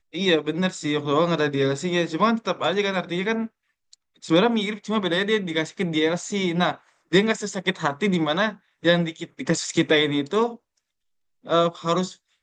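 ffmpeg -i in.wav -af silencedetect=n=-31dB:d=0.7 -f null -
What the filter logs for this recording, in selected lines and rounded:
silence_start: 10.53
silence_end: 11.47 | silence_duration: 0.94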